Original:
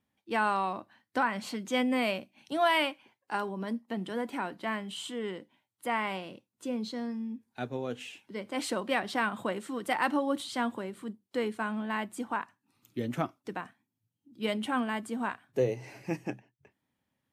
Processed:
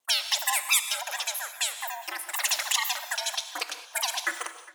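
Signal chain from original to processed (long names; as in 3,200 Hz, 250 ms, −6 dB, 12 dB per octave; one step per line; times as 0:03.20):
spectral tilt +3 dB per octave
ring modulation 33 Hz
change of speed 3.65×
pitch vibrato 1.3 Hz 11 cents
tape delay 410 ms, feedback 50%, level −20.5 dB, low-pass 5,100 Hz
reverb whose tail is shaped and stops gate 240 ms flat, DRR 9 dB
level +7 dB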